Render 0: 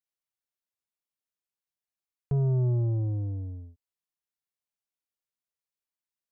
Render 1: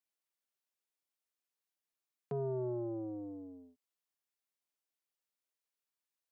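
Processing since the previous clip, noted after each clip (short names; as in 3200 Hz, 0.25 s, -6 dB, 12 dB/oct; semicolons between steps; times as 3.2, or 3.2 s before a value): HPF 220 Hz 24 dB/oct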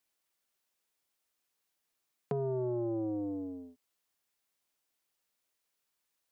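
compressor, threshold -40 dBFS, peak gain reduction 6.5 dB; gain +9 dB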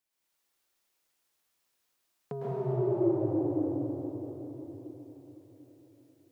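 reverb RT60 4.4 s, pre-delay 0.101 s, DRR -9.5 dB; gain -4.5 dB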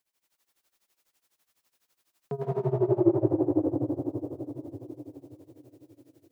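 tremolo 12 Hz, depth 88%; gain +7.5 dB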